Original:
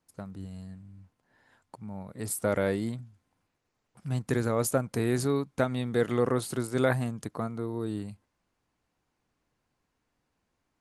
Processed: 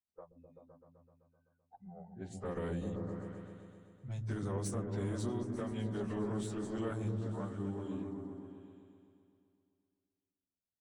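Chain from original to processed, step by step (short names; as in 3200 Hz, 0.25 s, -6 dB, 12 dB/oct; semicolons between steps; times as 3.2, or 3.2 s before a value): pitch shift by moving bins -2.5 st; spectral noise reduction 25 dB; low-pass opened by the level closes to 660 Hz, open at -26.5 dBFS; limiter -21 dBFS, peak gain reduction 6.5 dB; compressor 1.5:1, threshold -53 dBFS, peak gain reduction 10 dB; tube stage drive 32 dB, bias 0.55; on a send: repeats that get brighter 0.128 s, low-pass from 200 Hz, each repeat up 1 oct, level 0 dB; on the sum: gain +2.5 dB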